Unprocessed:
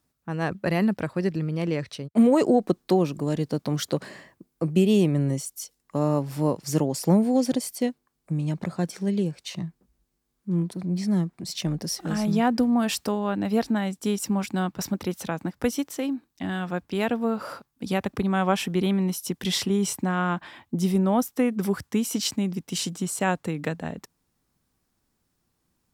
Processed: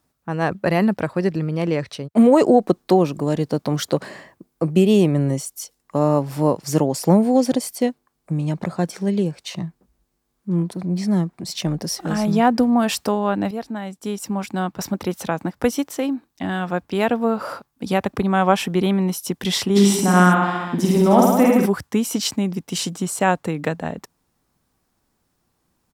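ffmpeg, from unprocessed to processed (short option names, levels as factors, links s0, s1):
-filter_complex "[0:a]asplit=3[s0][s1][s2];[s0]afade=t=out:st=19.75:d=0.02[s3];[s1]aecho=1:1:50|105|165.5|232|305.3|385.8:0.794|0.631|0.501|0.398|0.316|0.251,afade=t=in:st=19.75:d=0.02,afade=t=out:st=21.65:d=0.02[s4];[s2]afade=t=in:st=21.65:d=0.02[s5];[s3][s4][s5]amix=inputs=3:normalize=0,asplit=2[s6][s7];[s6]atrim=end=13.51,asetpts=PTS-STARTPTS,afade=t=out:st=13.506:d=0.004:c=hsin:silence=0.251189[s8];[s7]atrim=start=13.51,asetpts=PTS-STARTPTS,afade=t=in:d=1.69:silence=0.251189[s9];[s8][s9]concat=n=2:v=0:a=1,equalizer=f=780:t=o:w=1.9:g=4.5,volume=1.5"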